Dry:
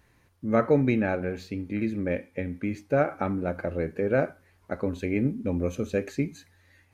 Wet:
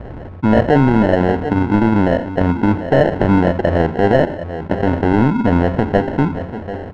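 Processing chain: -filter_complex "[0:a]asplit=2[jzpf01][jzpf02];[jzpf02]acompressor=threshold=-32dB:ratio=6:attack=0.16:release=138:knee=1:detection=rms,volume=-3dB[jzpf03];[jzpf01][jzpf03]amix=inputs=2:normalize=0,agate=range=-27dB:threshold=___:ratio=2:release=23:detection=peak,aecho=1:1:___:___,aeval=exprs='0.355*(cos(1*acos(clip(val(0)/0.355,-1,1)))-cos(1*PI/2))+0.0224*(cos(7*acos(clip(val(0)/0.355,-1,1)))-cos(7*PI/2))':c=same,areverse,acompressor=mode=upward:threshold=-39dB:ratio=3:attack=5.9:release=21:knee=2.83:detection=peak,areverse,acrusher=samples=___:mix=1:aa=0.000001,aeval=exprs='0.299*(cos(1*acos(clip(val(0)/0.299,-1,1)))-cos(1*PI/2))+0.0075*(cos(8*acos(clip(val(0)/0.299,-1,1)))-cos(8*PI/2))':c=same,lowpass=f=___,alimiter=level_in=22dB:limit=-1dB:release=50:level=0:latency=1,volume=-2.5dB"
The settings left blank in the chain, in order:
-54dB, 741, 0.119, 37, 1.5k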